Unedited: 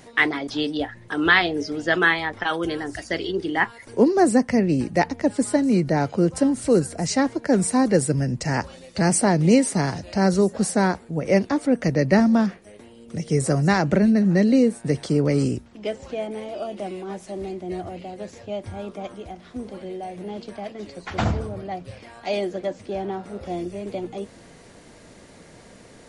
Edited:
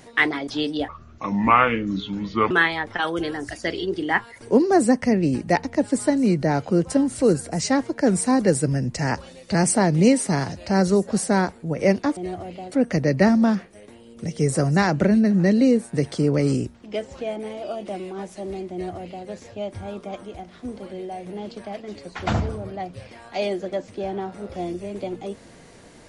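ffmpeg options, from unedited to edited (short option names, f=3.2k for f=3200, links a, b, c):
-filter_complex "[0:a]asplit=5[a][b][c][d][e];[a]atrim=end=0.884[f];[b]atrim=start=0.88:end=1.97,asetpts=PTS-STARTPTS,asetrate=29547,aresample=44100[g];[c]atrim=start=1.966:end=11.632[h];[d]atrim=start=17.628:end=18.182[i];[e]atrim=start=11.628[j];[f][g]acrossfade=d=0.004:c1=hsin:c2=hsin[k];[k][h]acrossfade=d=0.004:c1=hsin:c2=hsin[l];[l][i]acrossfade=d=0.004:c1=hsin:c2=hsin[m];[m][j]acrossfade=d=0.004:c1=hsin:c2=hsin"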